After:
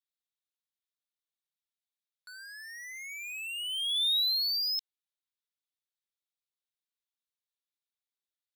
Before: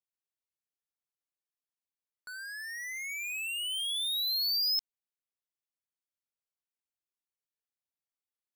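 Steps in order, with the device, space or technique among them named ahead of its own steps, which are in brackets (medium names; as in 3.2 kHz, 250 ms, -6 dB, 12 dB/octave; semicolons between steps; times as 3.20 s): headphones lying on a table (high-pass 1.1 kHz; peaking EQ 3.7 kHz +10.5 dB 0.53 oct); trim -5 dB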